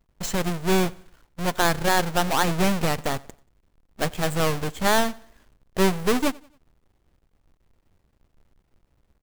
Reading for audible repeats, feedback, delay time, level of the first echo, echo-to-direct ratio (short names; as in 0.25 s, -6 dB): 2, 41%, 91 ms, -24.0 dB, -23.0 dB